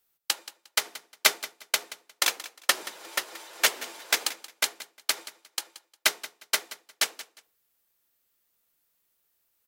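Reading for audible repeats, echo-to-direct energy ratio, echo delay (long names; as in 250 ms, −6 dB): 2, −16.5 dB, 178 ms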